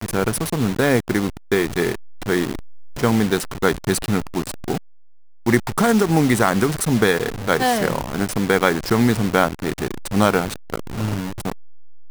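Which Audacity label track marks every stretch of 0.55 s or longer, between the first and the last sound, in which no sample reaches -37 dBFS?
4.780000	5.460000	silence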